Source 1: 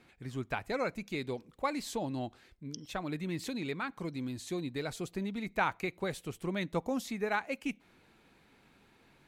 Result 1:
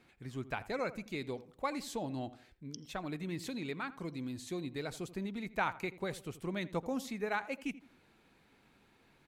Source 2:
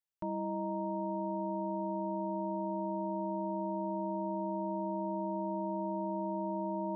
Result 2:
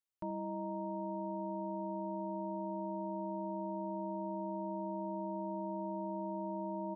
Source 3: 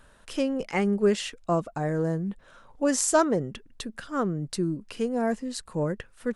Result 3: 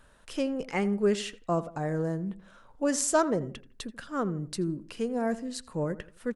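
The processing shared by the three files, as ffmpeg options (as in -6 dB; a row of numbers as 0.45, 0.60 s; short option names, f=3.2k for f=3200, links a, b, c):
-filter_complex "[0:a]asplit=2[a][b];[b]adelay=83,lowpass=f=1.8k:p=1,volume=-15.5dB,asplit=2[c][d];[d]adelay=83,lowpass=f=1.8k:p=1,volume=0.37,asplit=2[e][f];[f]adelay=83,lowpass=f=1.8k:p=1,volume=0.37[g];[a][c][e][g]amix=inputs=4:normalize=0,volume=-3dB"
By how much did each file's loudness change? -3.0, -4.0, -3.0 LU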